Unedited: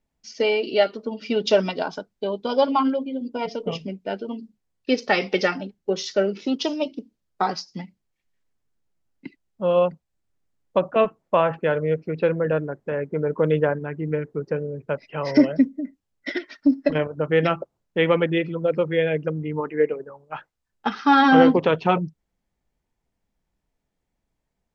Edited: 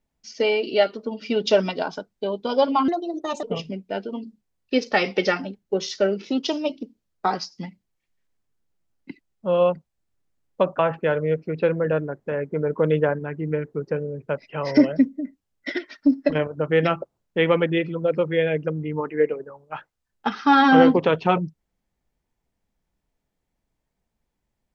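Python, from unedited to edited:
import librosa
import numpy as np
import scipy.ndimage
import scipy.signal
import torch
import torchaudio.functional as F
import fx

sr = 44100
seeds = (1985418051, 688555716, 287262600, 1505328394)

y = fx.edit(x, sr, fx.speed_span(start_s=2.88, length_s=0.71, speed=1.29),
    fx.cut(start_s=10.95, length_s=0.44), tone=tone)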